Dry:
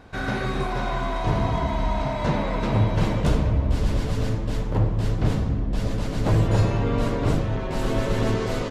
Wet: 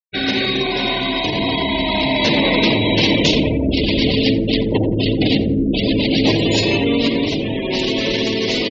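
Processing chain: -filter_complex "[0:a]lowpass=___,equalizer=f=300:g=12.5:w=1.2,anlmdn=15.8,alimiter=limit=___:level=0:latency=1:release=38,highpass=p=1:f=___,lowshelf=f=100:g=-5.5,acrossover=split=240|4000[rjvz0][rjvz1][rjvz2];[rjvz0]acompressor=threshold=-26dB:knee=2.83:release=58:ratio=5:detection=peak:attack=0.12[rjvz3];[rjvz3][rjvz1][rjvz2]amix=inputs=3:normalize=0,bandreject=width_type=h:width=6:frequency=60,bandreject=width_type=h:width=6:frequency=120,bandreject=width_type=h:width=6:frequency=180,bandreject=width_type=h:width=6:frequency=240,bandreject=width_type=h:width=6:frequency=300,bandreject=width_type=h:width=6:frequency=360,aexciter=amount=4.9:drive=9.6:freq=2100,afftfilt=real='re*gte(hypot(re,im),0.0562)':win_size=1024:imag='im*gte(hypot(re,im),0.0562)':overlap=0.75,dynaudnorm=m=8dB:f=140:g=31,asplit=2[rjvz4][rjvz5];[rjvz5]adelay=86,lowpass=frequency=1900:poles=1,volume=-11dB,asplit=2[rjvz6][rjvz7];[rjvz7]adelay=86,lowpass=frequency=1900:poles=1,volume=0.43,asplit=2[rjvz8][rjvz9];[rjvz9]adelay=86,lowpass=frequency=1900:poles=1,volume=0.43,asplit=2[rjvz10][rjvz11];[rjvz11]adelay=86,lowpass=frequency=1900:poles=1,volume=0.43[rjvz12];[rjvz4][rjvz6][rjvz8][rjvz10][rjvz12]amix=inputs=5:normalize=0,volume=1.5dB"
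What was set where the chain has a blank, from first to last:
6200, -12.5dB, 48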